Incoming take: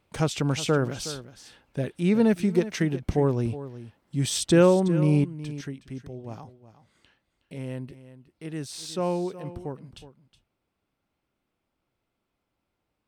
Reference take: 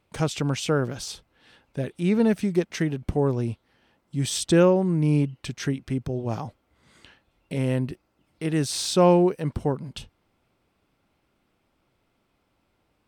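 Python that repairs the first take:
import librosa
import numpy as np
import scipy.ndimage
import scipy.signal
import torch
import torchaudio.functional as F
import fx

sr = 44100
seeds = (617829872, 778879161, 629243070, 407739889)

y = fx.fix_echo_inverse(x, sr, delay_ms=367, level_db=-14.5)
y = fx.fix_level(y, sr, at_s=5.24, step_db=10.0)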